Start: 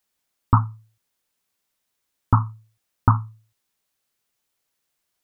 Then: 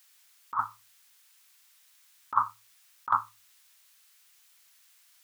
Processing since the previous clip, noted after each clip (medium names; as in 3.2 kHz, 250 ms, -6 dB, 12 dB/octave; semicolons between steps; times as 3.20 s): high-pass 1.4 kHz 12 dB/octave; compressor with a negative ratio -33 dBFS, ratio -0.5; trim +9 dB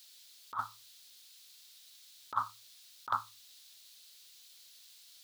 graphic EQ 125/250/500/1000/2000/4000 Hz -4/-5/+6/-11/-5/+12 dB; word length cut 12-bit, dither none; trim +1 dB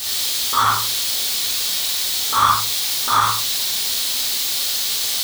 power-law waveshaper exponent 0.35; gated-style reverb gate 140 ms flat, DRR -7.5 dB; trim +3 dB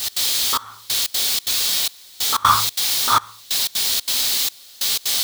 trance gate "x.xxxxx....xx.xx" 184 bpm -24 dB; trim +1.5 dB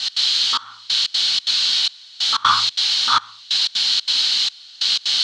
cabinet simulation 150–6200 Hz, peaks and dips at 310 Hz -6 dB, 440 Hz -9 dB, 630 Hz -7 dB, 1.5 kHz +6 dB, 3 kHz +9 dB, 4.2 kHz +10 dB; trim -3 dB